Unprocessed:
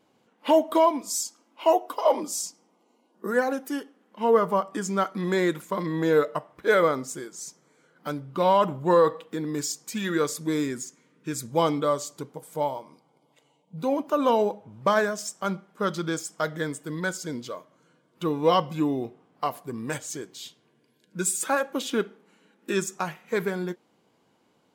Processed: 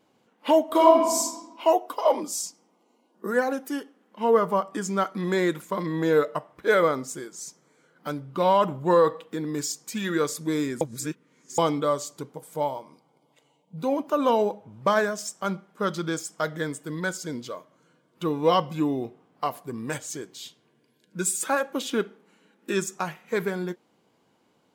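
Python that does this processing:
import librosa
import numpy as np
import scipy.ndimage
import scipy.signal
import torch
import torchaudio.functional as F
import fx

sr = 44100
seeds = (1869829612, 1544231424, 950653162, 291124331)

y = fx.reverb_throw(x, sr, start_s=0.64, length_s=0.58, rt60_s=1.2, drr_db=-1.0)
y = fx.edit(y, sr, fx.reverse_span(start_s=10.81, length_s=0.77), tone=tone)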